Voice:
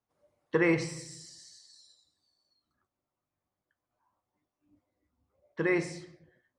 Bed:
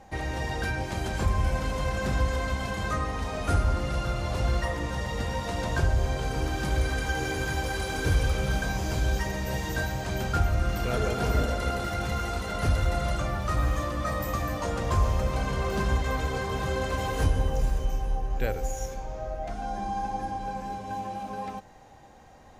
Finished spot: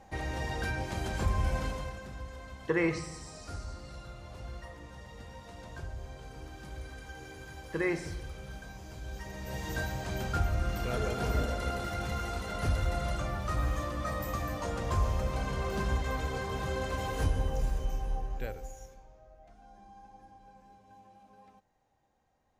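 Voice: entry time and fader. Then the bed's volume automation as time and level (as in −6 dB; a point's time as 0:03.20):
2.15 s, −3.0 dB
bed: 0:01.65 −4 dB
0:02.08 −17 dB
0:09.00 −17 dB
0:09.72 −5 dB
0:18.20 −5 dB
0:19.23 −22.5 dB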